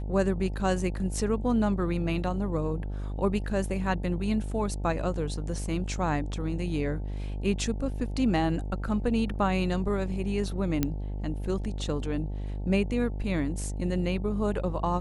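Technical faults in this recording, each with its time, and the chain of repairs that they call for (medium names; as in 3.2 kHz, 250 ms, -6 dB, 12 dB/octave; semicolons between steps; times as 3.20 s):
buzz 50 Hz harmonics 18 -33 dBFS
10.83 s: pop -11 dBFS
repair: de-click; de-hum 50 Hz, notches 18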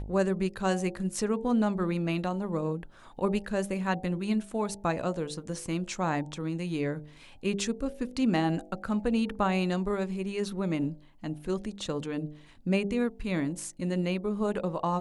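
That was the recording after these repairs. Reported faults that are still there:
nothing left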